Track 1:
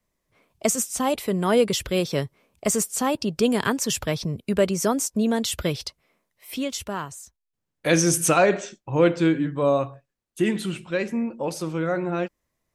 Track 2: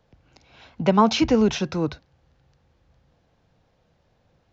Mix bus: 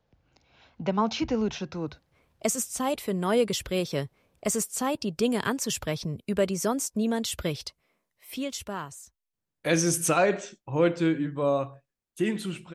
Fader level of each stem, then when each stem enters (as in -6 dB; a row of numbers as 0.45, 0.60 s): -4.5, -8.5 dB; 1.80, 0.00 s